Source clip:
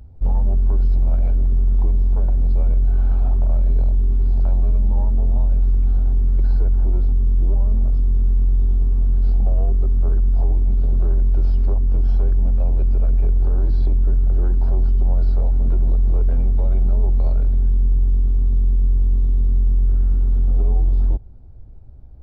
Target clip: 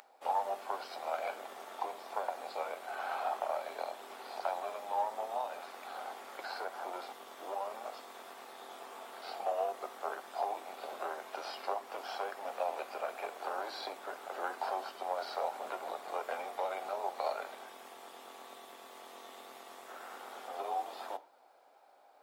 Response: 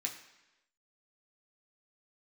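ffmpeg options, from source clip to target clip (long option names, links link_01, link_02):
-filter_complex "[0:a]highpass=frequency=690:width=0.5412,highpass=frequency=690:width=1.3066,asplit=2[link_01][link_02];[1:a]atrim=start_sample=2205,afade=type=out:start_time=0.16:duration=0.01,atrim=end_sample=7497[link_03];[link_02][link_03]afir=irnorm=-1:irlink=0,volume=-5.5dB[link_04];[link_01][link_04]amix=inputs=2:normalize=0,volume=7dB"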